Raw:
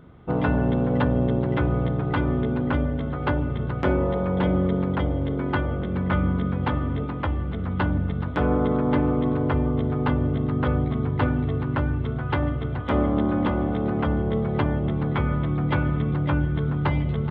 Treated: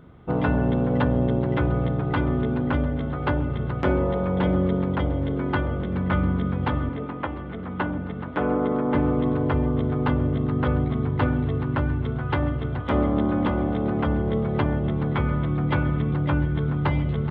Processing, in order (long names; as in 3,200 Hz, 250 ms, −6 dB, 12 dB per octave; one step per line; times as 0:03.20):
0:06.89–0:08.95: three-way crossover with the lows and the highs turned down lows −12 dB, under 170 Hz, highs −22 dB, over 3,700 Hz
feedback echo with a high-pass in the loop 698 ms, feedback 69%, level −20 dB